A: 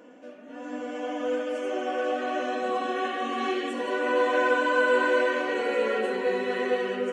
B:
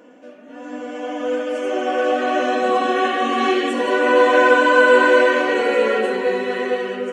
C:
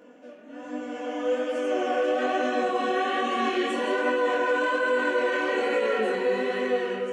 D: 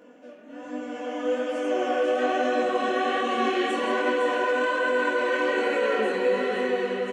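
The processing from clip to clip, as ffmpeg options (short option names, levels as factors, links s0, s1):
-af "dynaudnorm=f=490:g=7:m=2.24,volume=1.5"
-af "alimiter=limit=0.224:level=0:latency=1:release=23,flanger=delay=19.5:depth=7:speed=1.2,volume=0.841"
-af "aecho=1:1:507:0.473"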